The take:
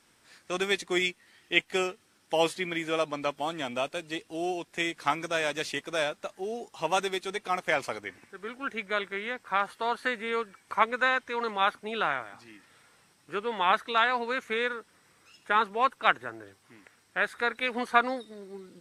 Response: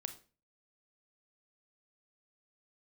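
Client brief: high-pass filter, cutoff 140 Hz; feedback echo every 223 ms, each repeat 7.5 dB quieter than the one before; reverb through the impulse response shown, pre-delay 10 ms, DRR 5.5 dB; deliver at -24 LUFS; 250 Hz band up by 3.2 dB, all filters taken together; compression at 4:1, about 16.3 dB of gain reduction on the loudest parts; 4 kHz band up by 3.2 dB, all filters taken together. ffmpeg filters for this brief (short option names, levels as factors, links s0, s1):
-filter_complex "[0:a]highpass=140,equalizer=f=250:t=o:g=5,equalizer=f=4000:t=o:g=4,acompressor=threshold=0.0158:ratio=4,aecho=1:1:223|446|669|892|1115:0.422|0.177|0.0744|0.0312|0.0131,asplit=2[s0][s1];[1:a]atrim=start_sample=2205,adelay=10[s2];[s1][s2]afir=irnorm=-1:irlink=0,volume=0.668[s3];[s0][s3]amix=inputs=2:normalize=0,volume=4.73"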